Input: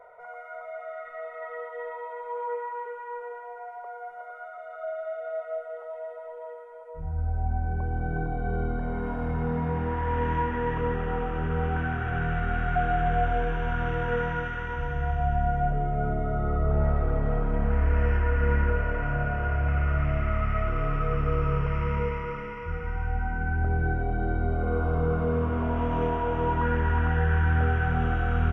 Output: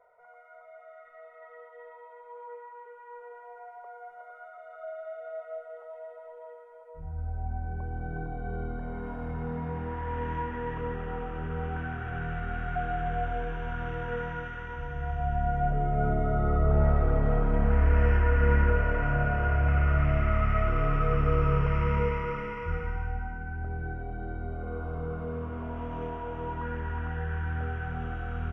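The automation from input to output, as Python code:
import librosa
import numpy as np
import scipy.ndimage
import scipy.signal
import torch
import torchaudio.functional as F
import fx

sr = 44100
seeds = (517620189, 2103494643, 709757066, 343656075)

y = fx.gain(x, sr, db=fx.line((2.8, -12.0), (3.52, -6.0), (14.9, -6.0), (16.06, 1.0), (22.75, 1.0), (23.44, -9.0)))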